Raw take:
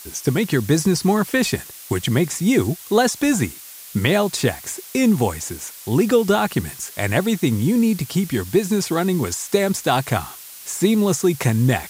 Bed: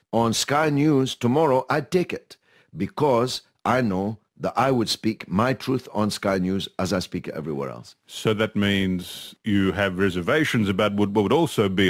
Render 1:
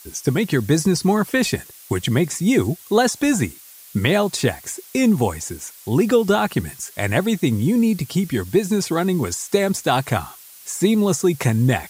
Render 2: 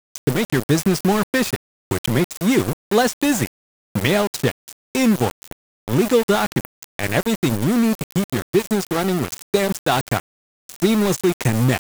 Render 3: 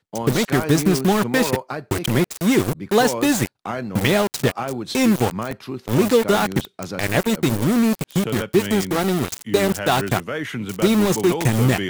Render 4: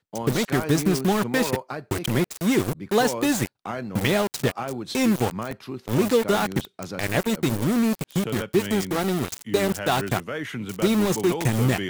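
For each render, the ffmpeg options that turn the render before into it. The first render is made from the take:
-af "afftdn=nr=6:nf=-39"
-af "aeval=exprs='val(0)*gte(abs(val(0)),0.1)':c=same"
-filter_complex "[1:a]volume=-6.5dB[a];[0:a][a]amix=inputs=2:normalize=0"
-af "volume=-4dB"

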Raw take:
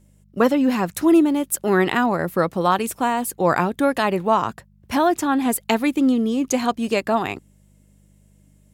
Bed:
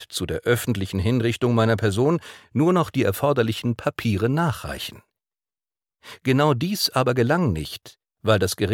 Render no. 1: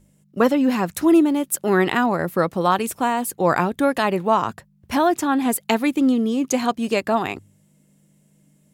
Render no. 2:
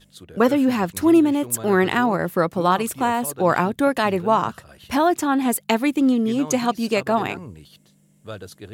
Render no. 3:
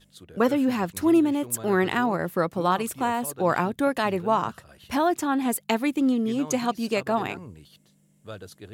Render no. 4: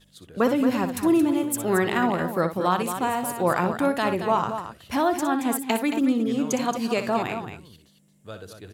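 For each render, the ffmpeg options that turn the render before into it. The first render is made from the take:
-af "bandreject=f=50:t=h:w=4,bandreject=f=100:t=h:w=4"
-filter_complex "[1:a]volume=-16.5dB[a];[0:a][a]amix=inputs=2:normalize=0"
-af "volume=-4.5dB"
-af "aecho=1:1:61.22|224.5:0.316|0.355"

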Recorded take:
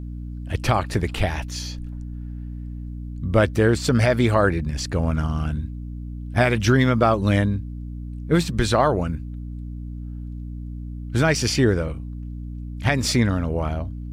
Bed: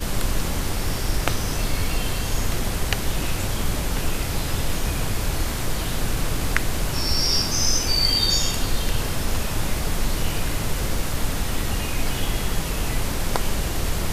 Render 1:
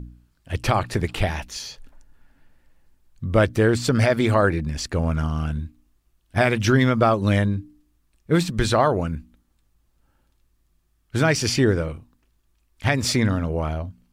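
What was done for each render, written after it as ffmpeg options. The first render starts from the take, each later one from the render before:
-af "bandreject=f=60:t=h:w=4,bandreject=f=120:t=h:w=4,bandreject=f=180:t=h:w=4,bandreject=f=240:t=h:w=4,bandreject=f=300:t=h:w=4"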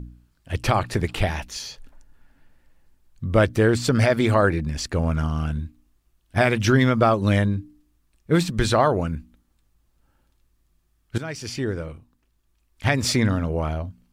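-filter_complex "[0:a]asplit=2[a][b];[a]atrim=end=11.18,asetpts=PTS-STARTPTS,afade=t=out:st=11.176:d=0.004:c=hsin:silence=0.16788[c];[b]atrim=start=11.18,asetpts=PTS-STARTPTS,afade=t=in:d=1.68:silence=0.16788[d];[c][d]concat=n=2:v=0:a=1"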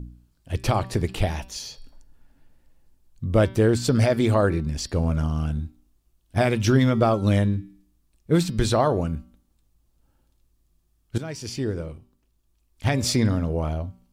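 -af "equalizer=f=1.7k:t=o:w=1.6:g=-7,bandreject=f=192.2:t=h:w=4,bandreject=f=384.4:t=h:w=4,bandreject=f=576.6:t=h:w=4,bandreject=f=768.8:t=h:w=4,bandreject=f=961:t=h:w=4,bandreject=f=1.1532k:t=h:w=4,bandreject=f=1.3454k:t=h:w=4,bandreject=f=1.5376k:t=h:w=4,bandreject=f=1.7298k:t=h:w=4,bandreject=f=1.922k:t=h:w=4,bandreject=f=2.1142k:t=h:w=4,bandreject=f=2.3064k:t=h:w=4,bandreject=f=2.4986k:t=h:w=4,bandreject=f=2.6908k:t=h:w=4,bandreject=f=2.883k:t=h:w=4,bandreject=f=3.0752k:t=h:w=4,bandreject=f=3.2674k:t=h:w=4,bandreject=f=3.4596k:t=h:w=4,bandreject=f=3.6518k:t=h:w=4,bandreject=f=3.844k:t=h:w=4,bandreject=f=4.0362k:t=h:w=4,bandreject=f=4.2284k:t=h:w=4,bandreject=f=4.4206k:t=h:w=4,bandreject=f=4.6128k:t=h:w=4,bandreject=f=4.805k:t=h:w=4,bandreject=f=4.9972k:t=h:w=4,bandreject=f=5.1894k:t=h:w=4,bandreject=f=5.3816k:t=h:w=4,bandreject=f=5.5738k:t=h:w=4"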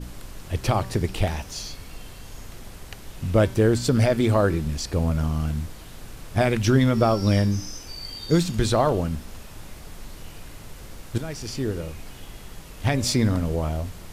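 -filter_complex "[1:a]volume=-16.5dB[a];[0:a][a]amix=inputs=2:normalize=0"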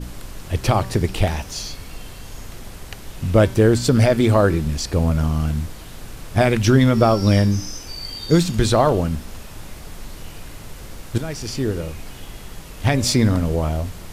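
-af "volume=4.5dB,alimiter=limit=-3dB:level=0:latency=1"

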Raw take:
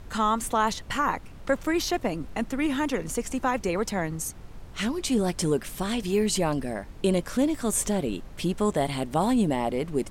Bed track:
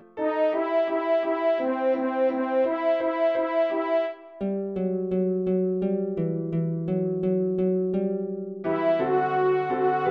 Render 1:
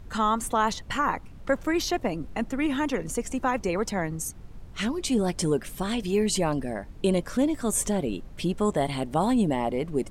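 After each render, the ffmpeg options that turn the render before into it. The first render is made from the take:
-af "afftdn=nr=6:nf=-44"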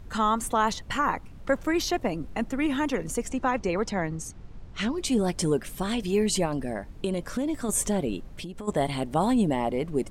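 -filter_complex "[0:a]asettb=1/sr,asplit=3[a][b][c];[a]atrim=end=3.294[d];[b]atrim=start=3.29:end=4.98,asetpts=PTS-STARTPTS,afade=t=in:d=0.004:c=qsin,afade=t=out:st=1.686:d=0.004:c=qsin,lowpass=6.5k[e];[c]atrim=start=4.976[f];[d][e]acrossfade=d=0.004:c1=hsin:c2=qsin[g];[g][f]acrossfade=d=0.004:c1=qsin:c2=hsin,asettb=1/sr,asplit=3[h][i][j];[h]atrim=end=6.454[k];[i]atrim=start=6.45:end=7.69,asetpts=PTS-STARTPTS,afade=t=in:d=0.004:c=qsin,afade=t=out:st=1.236:d=0.004:c=qsin,acompressor=threshold=-23dB:ratio=6:attack=3.2:release=140:knee=1:detection=peak[l];[j]atrim=start=7.686[m];[k][l]acrossfade=d=0.004:c1=hsin:c2=qsin[n];[n][m]acrossfade=d=0.004:c1=qsin:c2=hsin,asplit=3[o][p][q];[o]afade=t=out:st=8.26:d=0.02[r];[p]acompressor=threshold=-33dB:ratio=12:attack=3.2:release=140:knee=1:detection=peak,afade=t=in:st=8.26:d=0.02,afade=t=out:st=8.67:d=0.02[s];[q]afade=t=in:st=8.67:d=0.02[t];[r][s][t]amix=inputs=3:normalize=0"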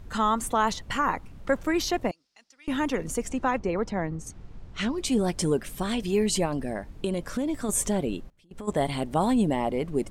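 -filter_complex "[0:a]asettb=1/sr,asplit=3[a][b][c];[a]atrim=end=2.114[d];[b]atrim=start=2.11:end=2.68,asetpts=PTS-STARTPTS,afade=t=in:d=0.004:c=qsin,afade=t=out:st=0.566:d=0.004:c=qsin,bandpass=f=5.1k:t=q:w=4.5[e];[c]atrim=start=2.676[f];[d][e]acrossfade=d=0.004:c1=hsin:c2=qsin[g];[g][f]acrossfade=d=0.004:c1=qsin:c2=hsin,asettb=1/sr,asplit=3[h][i][j];[h]atrim=end=3.574[k];[i]atrim=start=3.57:end=4.27,asetpts=PTS-STARTPTS,afade=t=in:d=0.004:c=qsin,afade=t=out:st=0.696:d=0.004:c=qsin,highshelf=f=2.4k:g=-10[l];[j]atrim=start=4.266[m];[k][l]acrossfade=d=0.004:c1=hsin:c2=qsin[n];[n][m]acrossfade=d=0.004:c1=qsin:c2=hsin,asplit=3[o][p][q];[o]atrim=end=8.3,asetpts=PTS-STARTPTS,afade=t=out:st=8.05:d=0.25:c=log:silence=0.0630957[r];[p]atrim=start=8.3:end=8.51,asetpts=PTS-STARTPTS,volume=-24dB[s];[q]atrim=start=8.51,asetpts=PTS-STARTPTS,afade=t=in:d=0.25:c=log:silence=0.0630957[t];[r][s][t]concat=n=3:v=0:a=1"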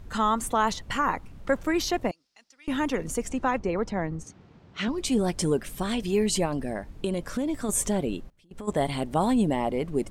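-filter_complex "[0:a]asettb=1/sr,asplit=3[a][b][c];[a]atrim=end=4.234[d];[b]atrim=start=4.23:end=4.88,asetpts=PTS-STARTPTS,afade=t=in:d=0.004:c=qsin,afade=t=out:st=0.646:d=0.004:c=qsin,highpass=140,lowpass=5.5k[e];[c]atrim=start=4.876[f];[d][e]acrossfade=d=0.004:c1=hsin:c2=qsin[g];[g][f]acrossfade=d=0.004:c1=qsin:c2=hsin"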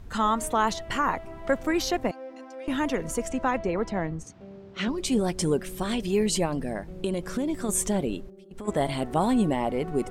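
-filter_complex "[1:a]volume=-17.5dB[a];[0:a][a]amix=inputs=2:normalize=0"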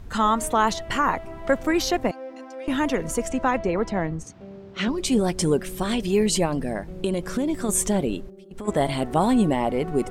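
-af "volume=3.5dB"

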